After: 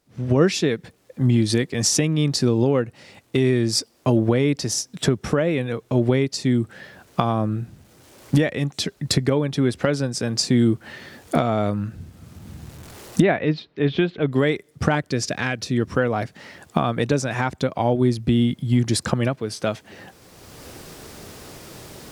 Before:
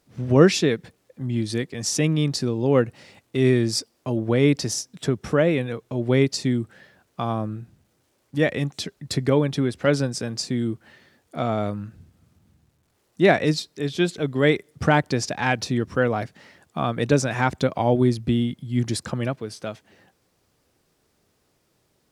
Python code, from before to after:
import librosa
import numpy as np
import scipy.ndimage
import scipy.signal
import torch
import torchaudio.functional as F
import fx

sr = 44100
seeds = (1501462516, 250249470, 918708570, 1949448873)

y = fx.recorder_agc(x, sr, target_db=-6.5, rise_db_per_s=20.0, max_gain_db=30)
y = fx.lowpass(y, sr, hz=3200.0, slope=24, at=(13.21, 14.31), fade=0.02)
y = fx.peak_eq(y, sr, hz=850.0, db=-12.5, octaves=0.34, at=(14.95, 15.78))
y = F.gain(torch.from_numpy(y), -3.0).numpy()